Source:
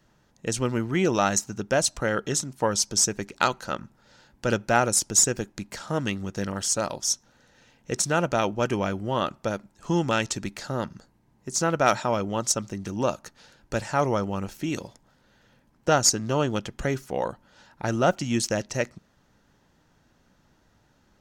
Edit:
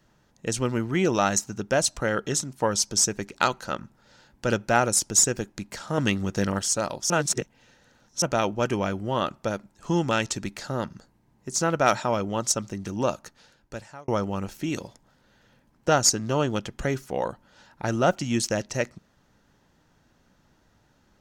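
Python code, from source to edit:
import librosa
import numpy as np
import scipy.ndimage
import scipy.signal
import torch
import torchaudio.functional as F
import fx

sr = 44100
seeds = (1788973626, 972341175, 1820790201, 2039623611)

y = fx.edit(x, sr, fx.clip_gain(start_s=5.98, length_s=0.61, db=4.5),
    fx.reverse_span(start_s=7.1, length_s=1.12),
    fx.fade_out_span(start_s=13.16, length_s=0.92), tone=tone)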